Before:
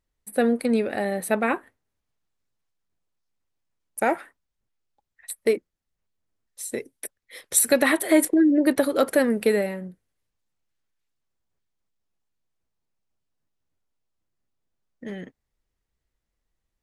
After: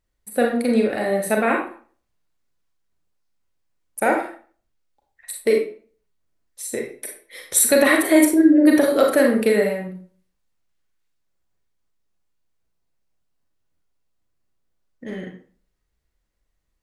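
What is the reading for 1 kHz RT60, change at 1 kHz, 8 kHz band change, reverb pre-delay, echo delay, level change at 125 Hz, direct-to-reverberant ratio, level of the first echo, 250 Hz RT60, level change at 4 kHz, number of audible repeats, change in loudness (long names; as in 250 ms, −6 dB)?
0.45 s, +4.0 dB, +3.5 dB, 32 ms, no echo audible, can't be measured, 0.5 dB, no echo audible, 0.45 s, +4.0 dB, no echo audible, +4.5 dB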